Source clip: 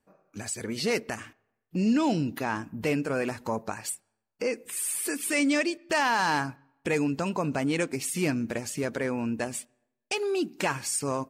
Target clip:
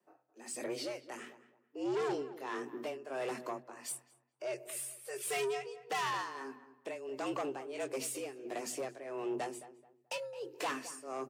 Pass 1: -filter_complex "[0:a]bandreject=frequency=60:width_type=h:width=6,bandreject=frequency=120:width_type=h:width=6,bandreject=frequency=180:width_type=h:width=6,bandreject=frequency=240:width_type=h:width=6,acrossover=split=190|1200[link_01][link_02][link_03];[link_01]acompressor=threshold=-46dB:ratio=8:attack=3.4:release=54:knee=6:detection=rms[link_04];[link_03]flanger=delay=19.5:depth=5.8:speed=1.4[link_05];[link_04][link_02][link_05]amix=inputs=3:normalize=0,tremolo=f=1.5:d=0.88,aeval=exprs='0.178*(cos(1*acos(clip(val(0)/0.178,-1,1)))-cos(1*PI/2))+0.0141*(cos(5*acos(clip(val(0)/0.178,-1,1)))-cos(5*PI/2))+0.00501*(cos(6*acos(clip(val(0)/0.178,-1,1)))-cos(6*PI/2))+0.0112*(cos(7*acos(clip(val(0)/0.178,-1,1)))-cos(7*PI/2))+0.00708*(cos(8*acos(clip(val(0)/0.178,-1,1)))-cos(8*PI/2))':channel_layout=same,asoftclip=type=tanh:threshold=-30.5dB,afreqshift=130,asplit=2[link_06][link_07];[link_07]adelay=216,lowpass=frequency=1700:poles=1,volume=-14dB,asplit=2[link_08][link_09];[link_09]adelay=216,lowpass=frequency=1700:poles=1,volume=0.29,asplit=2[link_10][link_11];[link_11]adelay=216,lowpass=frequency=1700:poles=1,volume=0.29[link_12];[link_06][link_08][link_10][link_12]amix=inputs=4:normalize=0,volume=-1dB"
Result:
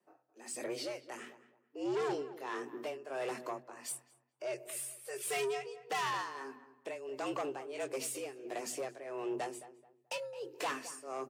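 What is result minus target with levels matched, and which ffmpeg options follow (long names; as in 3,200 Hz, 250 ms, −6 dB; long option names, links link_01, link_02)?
downward compressor: peak gain reduction +7 dB
-filter_complex "[0:a]bandreject=frequency=60:width_type=h:width=6,bandreject=frequency=120:width_type=h:width=6,bandreject=frequency=180:width_type=h:width=6,bandreject=frequency=240:width_type=h:width=6,acrossover=split=190|1200[link_01][link_02][link_03];[link_01]acompressor=threshold=-38dB:ratio=8:attack=3.4:release=54:knee=6:detection=rms[link_04];[link_03]flanger=delay=19.5:depth=5.8:speed=1.4[link_05];[link_04][link_02][link_05]amix=inputs=3:normalize=0,tremolo=f=1.5:d=0.88,aeval=exprs='0.178*(cos(1*acos(clip(val(0)/0.178,-1,1)))-cos(1*PI/2))+0.0141*(cos(5*acos(clip(val(0)/0.178,-1,1)))-cos(5*PI/2))+0.00501*(cos(6*acos(clip(val(0)/0.178,-1,1)))-cos(6*PI/2))+0.0112*(cos(7*acos(clip(val(0)/0.178,-1,1)))-cos(7*PI/2))+0.00708*(cos(8*acos(clip(val(0)/0.178,-1,1)))-cos(8*PI/2))':channel_layout=same,asoftclip=type=tanh:threshold=-30.5dB,afreqshift=130,asplit=2[link_06][link_07];[link_07]adelay=216,lowpass=frequency=1700:poles=1,volume=-14dB,asplit=2[link_08][link_09];[link_09]adelay=216,lowpass=frequency=1700:poles=1,volume=0.29,asplit=2[link_10][link_11];[link_11]adelay=216,lowpass=frequency=1700:poles=1,volume=0.29[link_12];[link_06][link_08][link_10][link_12]amix=inputs=4:normalize=0,volume=-1dB"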